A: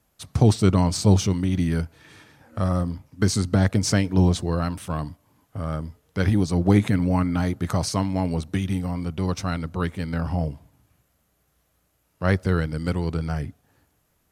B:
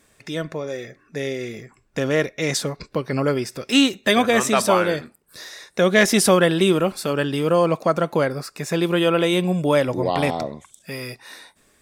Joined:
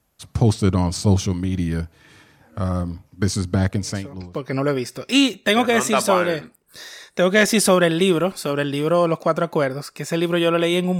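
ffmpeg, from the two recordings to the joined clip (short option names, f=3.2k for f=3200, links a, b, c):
-filter_complex "[0:a]apad=whole_dur=10.99,atrim=end=10.99,atrim=end=4.53,asetpts=PTS-STARTPTS[a];[1:a]atrim=start=2.29:end=9.59,asetpts=PTS-STARTPTS[b];[a][b]acrossfade=d=0.84:c1=qua:c2=qua"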